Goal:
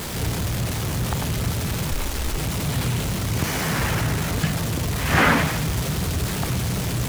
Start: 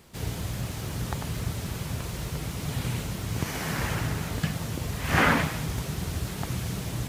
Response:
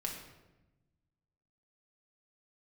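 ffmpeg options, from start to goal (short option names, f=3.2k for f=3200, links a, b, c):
-filter_complex "[0:a]aeval=exprs='val(0)+0.5*0.0398*sgn(val(0))':c=same,asettb=1/sr,asplit=3[a][b][c];[a]atrim=end=1.914[d];[b]atrim=start=1.91:end=2.38,asetpts=PTS-STARTPTS,afade=t=in:d=0.004:c=qsin,afade=t=out:st=0.466:d=0.004:c=qsin,afreqshift=-120[e];[c]atrim=start=2.376[f];[d][e]acrossfade=d=0.004:c1=hsin:c2=qsin[g];[g][f]acrossfade=d=0.004:c1=qsin:c2=hsin,volume=3dB"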